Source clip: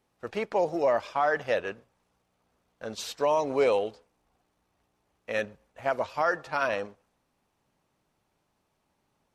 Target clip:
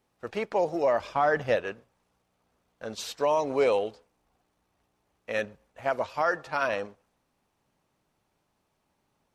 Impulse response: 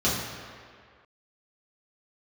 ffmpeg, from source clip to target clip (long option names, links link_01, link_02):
-filter_complex "[0:a]asettb=1/sr,asplit=3[link_01][link_02][link_03];[link_01]atrim=end=1.004[link_04];[link_02]atrim=start=1:end=1.56,asetpts=PTS-STARTPTS,afade=type=in:duration=0.004:curve=qsin,afade=type=out:start_time=0.556:duration=0.004:curve=qsin,lowshelf=frequency=270:gain=10.5[link_05];[link_03]atrim=start=1.556[link_06];[link_04][link_05]acrossfade=duration=0.004:curve1=hsin:curve2=qsin[link_07];[link_07][link_06]acrossfade=duration=0.004:curve1=qsin:curve2=hsin"